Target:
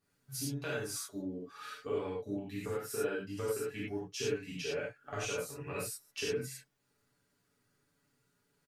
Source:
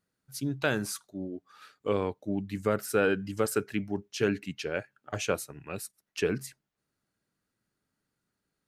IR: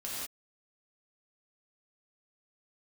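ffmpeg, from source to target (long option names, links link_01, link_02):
-filter_complex "[0:a]aecho=1:1:7.1:0.65,acompressor=threshold=-40dB:ratio=6[link_01];[1:a]atrim=start_sample=2205,asetrate=79380,aresample=44100[link_02];[link_01][link_02]afir=irnorm=-1:irlink=0,volume=8dB"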